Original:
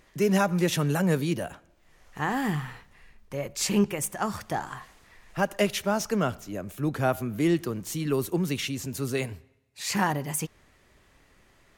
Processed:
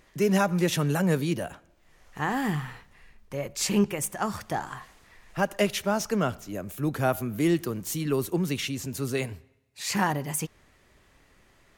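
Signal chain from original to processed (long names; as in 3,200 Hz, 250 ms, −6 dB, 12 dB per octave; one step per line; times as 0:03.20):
0:06.49–0:08.03: high-shelf EQ 10,000 Hz +7.5 dB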